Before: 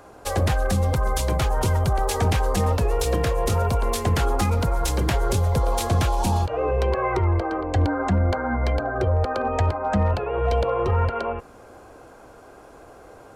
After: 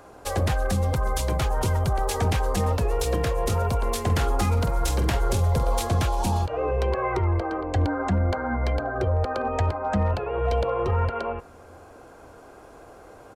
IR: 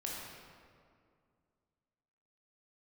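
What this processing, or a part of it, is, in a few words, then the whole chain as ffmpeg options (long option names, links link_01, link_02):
ducked reverb: -filter_complex "[0:a]asplit=3[link_01][link_02][link_03];[link_01]afade=type=out:start_time=4.08:duration=0.02[link_04];[link_02]asplit=2[link_05][link_06];[link_06]adelay=47,volume=-10dB[link_07];[link_05][link_07]amix=inputs=2:normalize=0,afade=type=in:start_time=4.08:duration=0.02,afade=type=out:start_time=5.81:duration=0.02[link_08];[link_03]afade=type=in:start_time=5.81:duration=0.02[link_09];[link_04][link_08][link_09]amix=inputs=3:normalize=0,asplit=3[link_10][link_11][link_12];[1:a]atrim=start_sample=2205[link_13];[link_11][link_13]afir=irnorm=-1:irlink=0[link_14];[link_12]apad=whole_len=588809[link_15];[link_14][link_15]sidechaincompress=threshold=-37dB:ratio=8:attack=16:release=857,volume=-11dB[link_16];[link_10][link_16]amix=inputs=2:normalize=0,volume=-2.5dB"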